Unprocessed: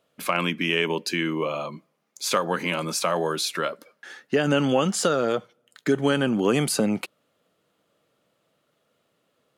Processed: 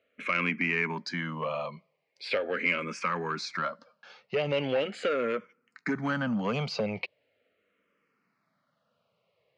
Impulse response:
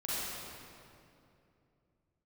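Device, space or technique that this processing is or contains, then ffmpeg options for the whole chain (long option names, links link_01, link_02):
barber-pole phaser into a guitar amplifier: -filter_complex "[0:a]asplit=2[link_01][link_02];[link_02]afreqshift=-0.4[link_03];[link_01][link_03]amix=inputs=2:normalize=1,asoftclip=type=tanh:threshold=-19dB,highpass=76,equalizer=frequency=140:width_type=q:width=4:gain=-4,equalizer=frequency=330:width_type=q:width=4:gain=-9,equalizer=frequency=800:width_type=q:width=4:gain=-4,equalizer=frequency=2200:width_type=q:width=4:gain=7,equalizer=frequency=3500:width_type=q:width=4:gain=-8,lowpass=frequency=4600:width=0.5412,lowpass=frequency=4600:width=1.3066"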